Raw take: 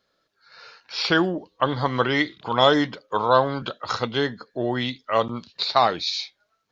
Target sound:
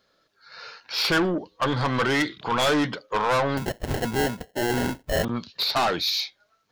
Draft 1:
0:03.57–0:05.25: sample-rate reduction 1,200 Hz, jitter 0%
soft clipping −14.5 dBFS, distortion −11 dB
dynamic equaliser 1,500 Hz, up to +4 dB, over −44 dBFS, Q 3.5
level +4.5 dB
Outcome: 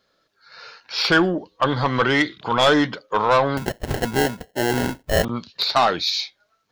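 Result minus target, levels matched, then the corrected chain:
soft clipping: distortion −6 dB
0:03.57–0:05.25: sample-rate reduction 1,200 Hz, jitter 0%
soft clipping −23.5 dBFS, distortion −5 dB
dynamic equaliser 1,500 Hz, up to +4 dB, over −44 dBFS, Q 3.5
level +4.5 dB

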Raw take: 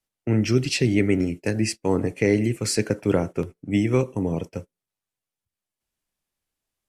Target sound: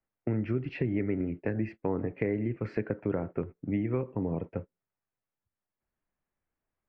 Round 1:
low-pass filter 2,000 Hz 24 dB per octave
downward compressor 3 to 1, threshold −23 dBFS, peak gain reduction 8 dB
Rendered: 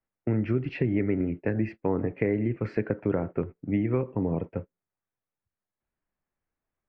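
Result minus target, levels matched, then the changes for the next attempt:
downward compressor: peak gain reduction −4 dB
change: downward compressor 3 to 1, threshold −29 dBFS, peak gain reduction 12 dB

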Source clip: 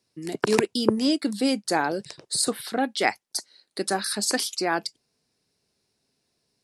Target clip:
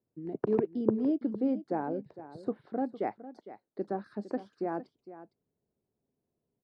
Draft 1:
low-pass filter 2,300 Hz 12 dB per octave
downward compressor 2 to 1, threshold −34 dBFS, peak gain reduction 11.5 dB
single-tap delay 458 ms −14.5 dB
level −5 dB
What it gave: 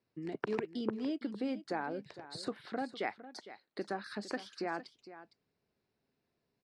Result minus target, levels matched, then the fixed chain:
2,000 Hz band +14.0 dB; downward compressor: peak gain reduction +11.5 dB
low-pass filter 650 Hz 12 dB per octave
single-tap delay 458 ms −14.5 dB
level −5 dB

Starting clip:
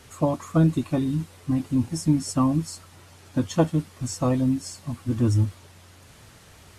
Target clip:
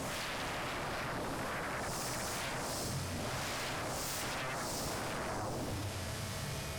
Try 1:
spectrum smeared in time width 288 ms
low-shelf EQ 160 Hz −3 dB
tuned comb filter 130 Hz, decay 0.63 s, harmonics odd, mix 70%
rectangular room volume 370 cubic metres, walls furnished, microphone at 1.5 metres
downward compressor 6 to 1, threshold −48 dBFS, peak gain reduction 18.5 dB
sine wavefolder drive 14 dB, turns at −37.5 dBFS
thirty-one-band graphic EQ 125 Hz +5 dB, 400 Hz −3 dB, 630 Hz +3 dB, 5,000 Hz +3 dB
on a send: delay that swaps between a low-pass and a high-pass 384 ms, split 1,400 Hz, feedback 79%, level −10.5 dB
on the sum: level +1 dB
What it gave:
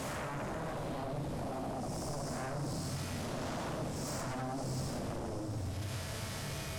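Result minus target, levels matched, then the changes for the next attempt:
downward compressor: peak gain reduction +7 dB
change: downward compressor 6 to 1, threshold −39.5 dBFS, peak gain reduction 11.5 dB

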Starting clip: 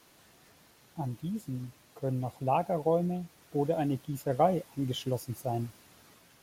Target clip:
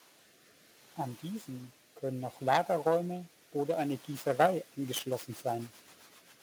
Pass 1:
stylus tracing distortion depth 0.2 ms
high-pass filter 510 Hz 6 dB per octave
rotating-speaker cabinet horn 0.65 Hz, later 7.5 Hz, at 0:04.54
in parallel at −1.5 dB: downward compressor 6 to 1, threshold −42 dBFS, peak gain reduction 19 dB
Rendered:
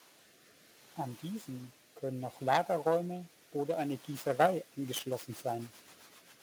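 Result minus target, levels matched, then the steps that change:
downward compressor: peak gain reduction +7 dB
change: downward compressor 6 to 1, threshold −33.5 dBFS, peak gain reduction 12 dB

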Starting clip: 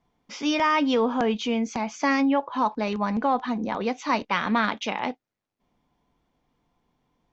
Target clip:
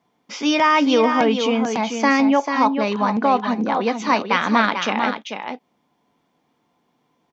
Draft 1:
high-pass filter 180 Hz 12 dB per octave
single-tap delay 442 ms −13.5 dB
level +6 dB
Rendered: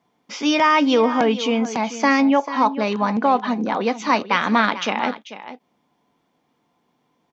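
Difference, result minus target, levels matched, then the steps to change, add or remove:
echo-to-direct −6.5 dB
change: single-tap delay 442 ms −7 dB

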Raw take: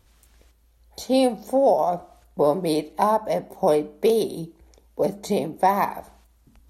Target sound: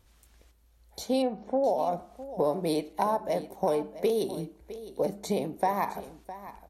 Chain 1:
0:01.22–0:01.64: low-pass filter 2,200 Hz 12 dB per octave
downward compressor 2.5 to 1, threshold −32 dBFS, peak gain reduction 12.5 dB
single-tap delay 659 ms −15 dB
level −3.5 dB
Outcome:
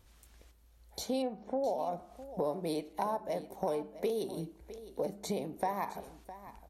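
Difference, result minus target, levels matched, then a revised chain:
downward compressor: peak gain reduction +7 dB
0:01.22–0:01.64: low-pass filter 2,200 Hz 12 dB per octave
downward compressor 2.5 to 1, threshold −20.5 dBFS, peak gain reduction 5.5 dB
single-tap delay 659 ms −15 dB
level −3.5 dB

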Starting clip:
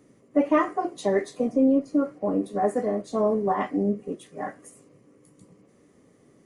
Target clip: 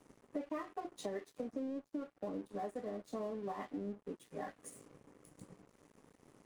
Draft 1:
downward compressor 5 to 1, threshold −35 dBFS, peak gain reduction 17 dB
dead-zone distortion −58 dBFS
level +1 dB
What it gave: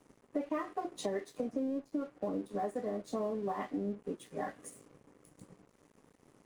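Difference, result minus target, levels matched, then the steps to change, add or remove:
downward compressor: peak gain reduction −5 dB
change: downward compressor 5 to 1, threshold −41.5 dBFS, peak gain reduction 22 dB

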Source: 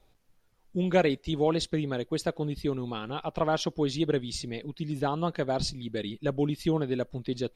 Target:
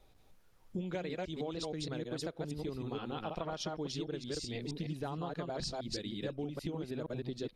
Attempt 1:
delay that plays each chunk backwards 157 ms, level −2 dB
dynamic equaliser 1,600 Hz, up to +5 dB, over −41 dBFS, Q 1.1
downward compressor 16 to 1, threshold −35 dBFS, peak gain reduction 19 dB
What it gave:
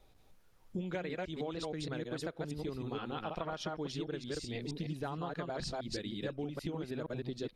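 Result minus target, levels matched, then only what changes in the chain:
2,000 Hz band +3.0 dB
change: dynamic equaliser 5,400 Hz, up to +5 dB, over −41 dBFS, Q 1.1

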